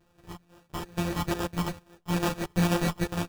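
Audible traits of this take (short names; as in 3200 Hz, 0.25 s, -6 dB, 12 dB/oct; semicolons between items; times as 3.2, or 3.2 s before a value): a buzz of ramps at a fixed pitch in blocks of 256 samples; phasing stages 12, 2.3 Hz, lowest notch 500–4200 Hz; aliases and images of a low sample rate 2100 Hz, jitter 0%; a shimmering, thickened sound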